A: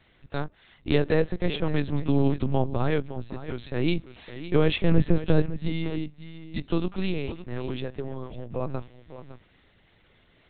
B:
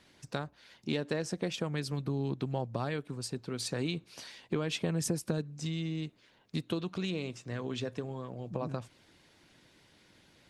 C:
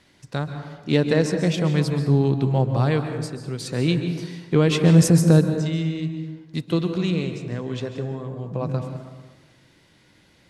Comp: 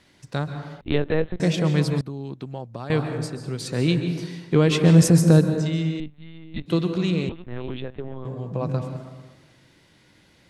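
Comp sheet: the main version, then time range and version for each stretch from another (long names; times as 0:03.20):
C
0:00.81–0:01.40: punch in from A
0:02.01–0:02.90: punch in from B
0:06.00–0:06.66: punch in from A
0:07.29–0:08.25: punch in from A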